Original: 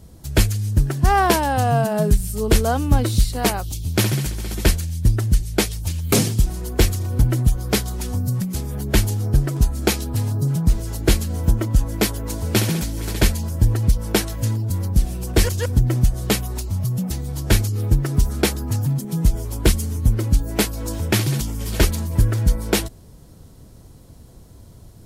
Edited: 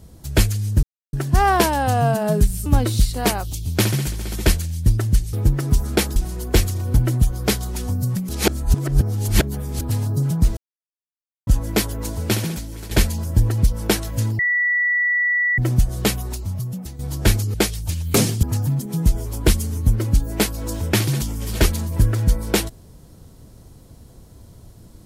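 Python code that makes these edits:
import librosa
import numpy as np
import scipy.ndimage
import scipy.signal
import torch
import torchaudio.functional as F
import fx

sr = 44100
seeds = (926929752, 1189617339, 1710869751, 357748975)

y = fx.edit(x, sr, fx.insert_silence(at_s=0.83, length_s=0.3),
    fx.cut(start_s=2.36, length_s=0.49),
    fx.swap(start_s=5.52, length_s=0.89, other_s=17.79, other_length_s=0.83),
    fx.reverse_span(start_s=8.54, length_s=1.52),
    fx.silence(start_s=10.82, length_s=0.9),
    fx.fade_out_to(start_s=12.27, length_s=0.89, floor_db=-9.5),
    fx.bleep(start_s=14.64, length_s=1.19, hz=1950.0, db=-16.0),
    fx.fade_out_to(start_s=16.43, length_s=0.81, floor_db=-10.5), tone=tone)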